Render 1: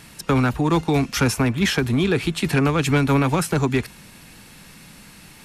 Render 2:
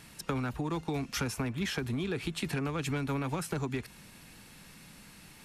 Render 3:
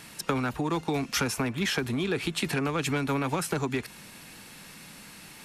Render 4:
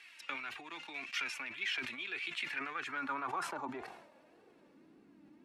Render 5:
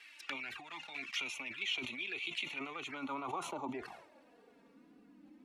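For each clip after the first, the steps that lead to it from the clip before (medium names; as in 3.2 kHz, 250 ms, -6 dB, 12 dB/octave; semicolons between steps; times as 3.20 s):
compression, threshold -22 dBFS, peak gain reduction 7.5 dB; trim -8 dB
bass shelf 130 Hz -11 dB; trim +7 dB
flange 1.8 Hz, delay 2.5 ms, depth 1.1 ms, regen +26%; band-pass sweep 2.4 kHz -> 280 Hz, 2.32–5.12 s; decay stretcher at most 64 dB/s; trim +1 dB
touch-sensitive flanger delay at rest 5.3 ms, full sweep at -37.5 dBFS; trim +3 dB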